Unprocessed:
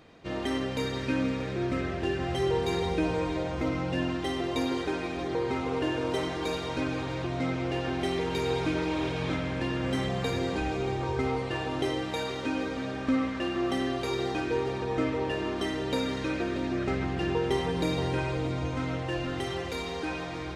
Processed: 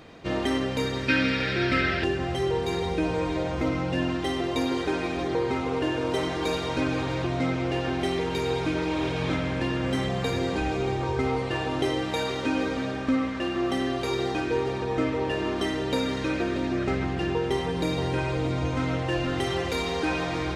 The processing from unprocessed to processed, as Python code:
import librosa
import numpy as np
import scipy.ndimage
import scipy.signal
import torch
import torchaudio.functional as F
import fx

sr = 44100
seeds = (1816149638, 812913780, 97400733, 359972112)

y = fx.rider(x, sr, range_db=5, speed_s=0.5)
y = fx.spec_box(y, sr, start_s=1.08, length_s=0.96, low_hz=1300.0, high_hz=5600.0, gain_db=11)
y = F.gain(torch.from_numpy(y), 3.0).numpy()